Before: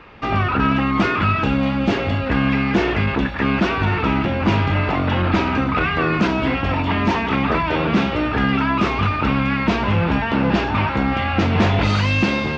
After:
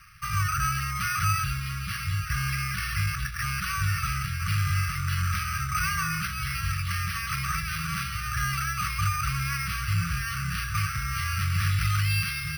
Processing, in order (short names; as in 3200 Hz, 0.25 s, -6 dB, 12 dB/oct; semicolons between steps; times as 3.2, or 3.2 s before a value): brick-wall FIR band-stop 170–1100 Hz; air absorption 66 m; careless resampling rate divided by 6×, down filtered, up hold; gain -5.5 dB